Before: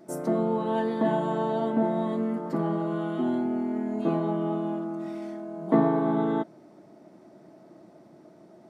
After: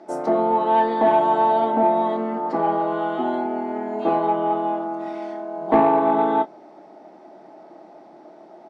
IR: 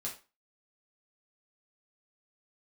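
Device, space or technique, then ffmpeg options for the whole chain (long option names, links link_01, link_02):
intercom: -filter_complex "[0:a]asettb=1/sr,asplit=3[link_01][link_02][link_03];[link_01]atrim=end=2.124[link_04];[link_02]atrim=start=2.12:end=2.98,asetpts=PTS-STARTPTS,afade=type=in:duration=0.004:curve=qsin,afade=type=out:start_time=0.856:duration=0.004:curve=qsin,lowpass=8600[link_05];[link_03]atrim=start=2.976[link_06];[link_04][link_05]acrossfade=duration=0.004:curve1=hsin:curve2=qsin[link_07];[link_07][link_06]acrossfade=duration=0.004:curve1=qsin:curve2=hsin,highpass=340,lowpass=4600,equalizer=frequency=810:width_type=o:width=0.32:gain=11,asoftclip=type=tanh:threshold=-13.5dB,asplit=2[link_08][link_09];[link_09]adelay=26,volume=-11dB[link_10];[link_08][link_10]amix=inputs=2:normalize=0,volume=7dB"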